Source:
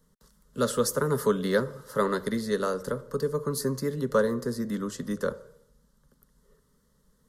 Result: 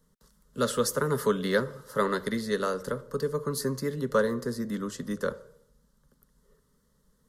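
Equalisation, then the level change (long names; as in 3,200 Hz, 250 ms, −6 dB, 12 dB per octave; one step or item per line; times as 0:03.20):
dynamic equaliser 2,500 Hz, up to +5 dB, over −45 dBFS, Q 0.88
−1.5 dB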